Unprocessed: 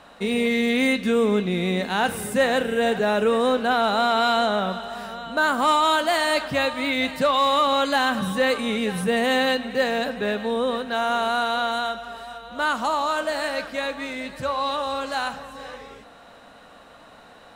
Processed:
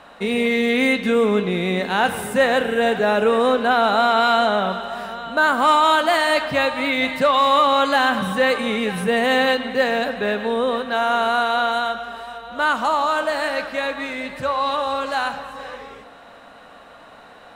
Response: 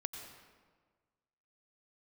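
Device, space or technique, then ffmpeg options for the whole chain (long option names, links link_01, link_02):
filtered reverb send: -filter_complex "[0:a]asplit=2[link_01][link_02];[link_02]highpass=frequency=490:poles=1,lowpass=3700[link_03];[1:a]atrim=start_sample=2205[link_04];[link_03][link_04]afir=irnorm=-1:irlink=0,volume=-1.5dB[link_05];[link_01][link_05]amix=inputs=2:normalize=0"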